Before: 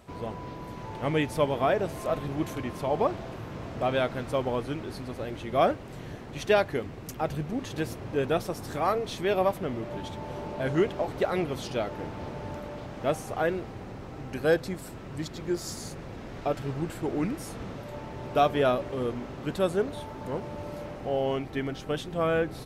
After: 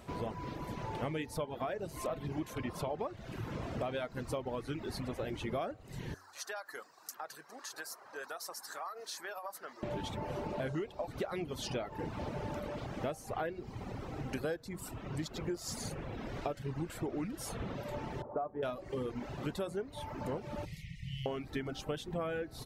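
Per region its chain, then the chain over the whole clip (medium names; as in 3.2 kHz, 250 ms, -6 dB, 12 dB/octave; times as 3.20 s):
6.14–9.83 s: high-pass 1.2 kHz + high-order bell 2.7 kHz -12.5 dB 1 oct + compression 8:1, threshold -38 dBFS
18.22–18.63 s: low-pass 1.1 kHz 24 dB/octave + bass shelf 380 Hz -10.5 dB
20.65–21.26 s: brick-wall FIR band-stop 190–1800 Hz + treble shelf 12 kHz -9 dB
whole clip: de-hum 93.82 Hz, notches 20; reverb removal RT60 0.84 s; compression 16:1, threshold -35 dBFS; trim +1.5 dB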